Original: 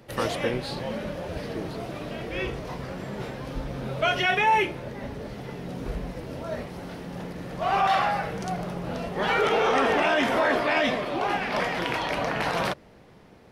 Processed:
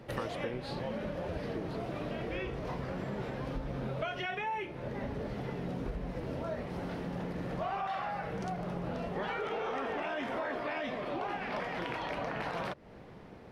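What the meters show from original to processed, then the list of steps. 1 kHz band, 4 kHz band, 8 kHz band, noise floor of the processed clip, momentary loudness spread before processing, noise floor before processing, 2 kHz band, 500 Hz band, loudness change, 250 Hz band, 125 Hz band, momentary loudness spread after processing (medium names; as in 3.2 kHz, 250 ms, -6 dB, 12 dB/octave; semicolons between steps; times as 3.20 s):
-11.5 dB, -14.0 dB, under -15 dB, -51 dBFS, 15 LU, -52 dBFS, -12.5 dB, -9.0 dB, -10.5 dB, -6.5 dB, -4.5 dB, 3 LU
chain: compression 6:1, threshold -35 dBFS, peak gain reduction 16.5 dB; treble shelf 4.3 kHz -11 dB; trim +1.5 dB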